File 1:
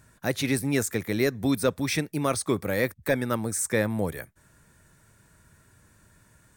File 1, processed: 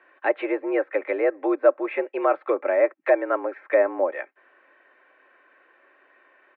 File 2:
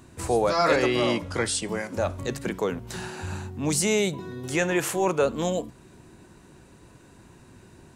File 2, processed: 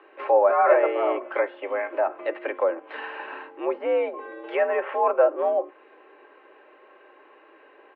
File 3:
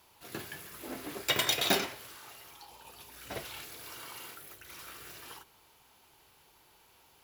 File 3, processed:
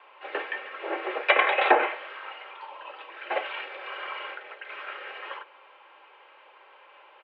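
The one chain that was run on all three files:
comb 4 ms, depth 48%; treble ducked by the level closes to 1200 Hz, closed at -22 dBFS; mistuned SSB +76 Hz 340–2700 Hz; normalise peaks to -6 dBFS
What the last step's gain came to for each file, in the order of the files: +6.5, +4.0, +12.5 dB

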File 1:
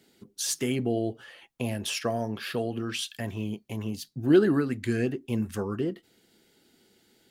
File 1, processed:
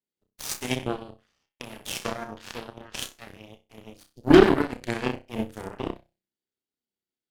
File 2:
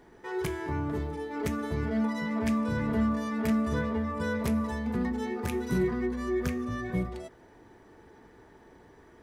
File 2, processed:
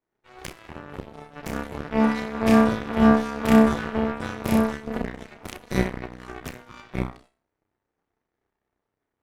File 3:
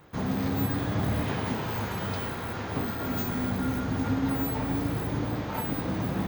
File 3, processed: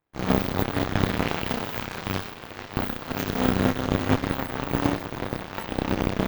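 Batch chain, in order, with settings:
flutter echo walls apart 5.4 m, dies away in 0.53 s; dynamic EQ 2900 Hz, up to +4 dB, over -52 dBFS, Q 1.8; added harmonics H 4 -17 dB, 6 -30 dB, 7 -17 dB, 8 -31 dB, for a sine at -7 dBFS; normalise peaks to -2 dBFS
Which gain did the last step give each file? +3.5, +7.0, +8.5 dB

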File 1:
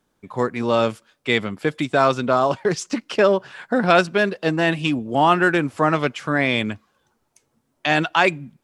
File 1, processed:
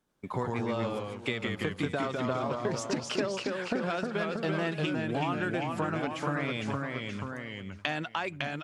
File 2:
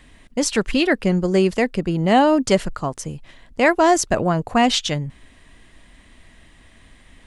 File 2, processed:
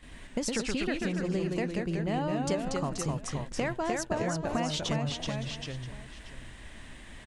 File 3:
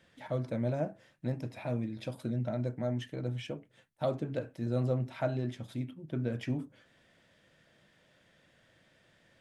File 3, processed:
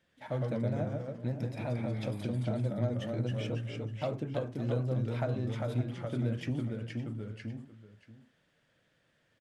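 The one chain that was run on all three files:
gate -50 dBFS, range -9 dB; dynamic EQ 100 Hz, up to +6 dB, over -39 dBFS, Q 1.3; compressor 16:1, threshold -29 dBFS; echo 0.564 s -14.5 dB; echoes that change speed 89 ms, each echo -1 st, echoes 2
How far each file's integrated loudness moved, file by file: -12.5, -13.0, +1.0 LU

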